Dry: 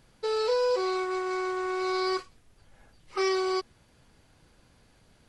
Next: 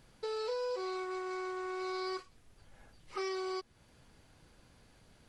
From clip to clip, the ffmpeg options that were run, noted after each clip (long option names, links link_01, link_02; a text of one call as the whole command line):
ffmpeg -i in.wav -af "acompressor=threshold=-40dB:ratio=2,volume=-1.5dB" out.wav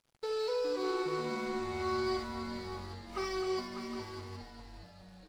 ffmpeg -i in.wav -filter_complex "[0:a]asplit=2[link_01][link_02];[link_02]aecho=0:1:53|67|260|598|764:0.299|0.376|0.335|0.355|0.251[link_03];[link_01][link_03]amix=inputs=2:normalize=0,aeval=exprs='sgn(val(0))*max(abs(val(0))-0.0015,0)':channel_layout=same,asplit=2[link_04][link_05];[link_05]asplit=8[link_06][link_07][link_08][link_09][link_10][link_11][link_12][link_13];[link_06]adelay=412,afreqshift=-140,volume=-9dB[link_14];[link_07]adelay=824,afreqshift=-280,volume=-13.3dB[link_15];[link_08]adelay=1236,afreqshift=-420,volume=-17.6dB[link_16];[link_09]adelay=1648,afreqshift=-560,volume=-21.9dB[link_17];[link_10]adelay=2060,afreqshift=-700,volume=-26.2dB[link_18];[link_11]adelay=2472,afreqshift=-840,volume=-30.5dB[link_19];[link_12]adelay=2884,afreqshift=-980,volume=-34.8dB[link_20];[link_13]adelay=3296,afreqshift=-1120,volume=-39.1dB[link_21];[link_14][link_15][link_16][link_17][link_18][link_19][link_20][link_21]amix=inputs=8:normalize=0[link_22];[link_04][link_22]amix=inputs=2:normalize=0,volume=1.5dB" out.wav